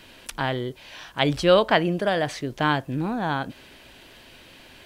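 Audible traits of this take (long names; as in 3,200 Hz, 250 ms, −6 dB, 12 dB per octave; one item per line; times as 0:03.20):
background noise floor −50 dBFS
spectral slope −3.5 dB per octave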